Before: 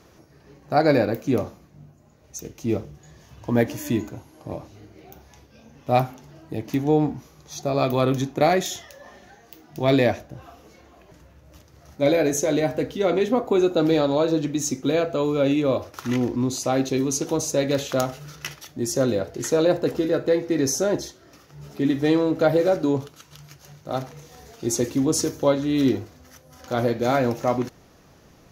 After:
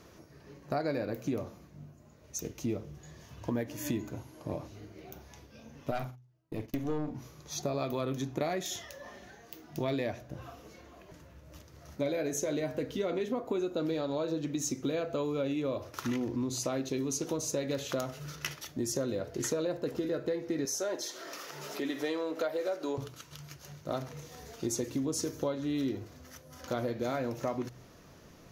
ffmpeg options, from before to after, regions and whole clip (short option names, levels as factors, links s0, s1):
-filter_complex "[0:a]asettb=1/sr,asplit=3[s0][s1][s2];[s0]atrim=end=5.914[s3];[s1]atrim=start=5.91:end=7.15,asetpts=PTS-STARTPTS,afade=t=in:d=0.004:c=qsin,afade=t=out:st=1.236:d=0.004:c=qsin,agate=range=0.0447:threshold=0.0126:ratio=16:release=100:detection=peak,asplit=2[s4][s5];[s5]adelay=46,volume=0.282[s6];[s4][s6]amix=inputs=2:normalize=0,atrim=end_sample=54684,aeval=exprs='(tanh(6.31*val(0)+0.75)-tanh(0.75))/6.31':c=same[s7];[s2]atrim=start=7.146[s8];[s3][s7]acrossfade=d=0.004:c1=hsin:c2=qsin[s9];[s9][s8]acrossfade=d=0.004:c1=qsin:c2=hsin,asettb=1/sr,asplit=3[s10][s11][s12];[s10]atrim=end=20.654[s13];[s11]atrim=start=20.65:end=22.98,asetpts=PTS-STARTPTS,afade=t=in:d=0.004:c=qsin,afade=t=out:st=2.326:d=0.004:c=qsin,highpass=490,acompressor=mode=upward:threshold=0.0398:ratio=2.5:attack=3.2:release=140:knee=2.83:detection=peak[s14];[s12]atrim=start=22.976[s15];[s13][s14]acrossfade=d=0.004:c1=hsin:c2=qsin[s16];[s16][s15]acrossfade=d=0.004:c1=qsin:c2=hsin,bandreject=f=790:w=12,bandreject=f=62.23:t=h:w=4,bandreject=f=124.46:t=h:w=4,acompressor=threshold=0.0398:ratio=6,volume=0.794"